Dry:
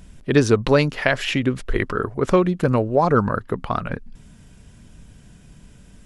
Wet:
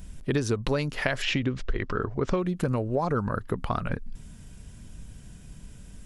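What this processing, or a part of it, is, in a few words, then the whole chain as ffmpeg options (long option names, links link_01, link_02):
ASMR close-microphone chain: -filter_complex "[0:a]asettb=1/sr,asplit=3[link_01][link_02][link_03];[link_01]atrim=end=1.224[link_04];[link_02]atrim=start=1.22:end=2.39,asetpts=PTS-STARTPTS,afade=type=in:duration=0.004:curve=qsin,afade=type=out:start_time=1.166:duration=0.004:curve=qsin,lowpass=frequency=6100:width=0.5412,lowpass=frequency=6100:width=1.3066[link_05];[link_03]atrim=start=2.386[link_06];[link_04][link_05]acrossfade=duration=0.004:curve1=hsin:curve2=qsin[link_07];[link_07][link_06]acrossfade=duration=0.004:curve1=qsin:curve2=hsin,lowshelf=frequency=110:gain=7,acompressor=threshold=-20dB:ratio=5,highshelf=frequency=6500:gain=8,volume=-3dB"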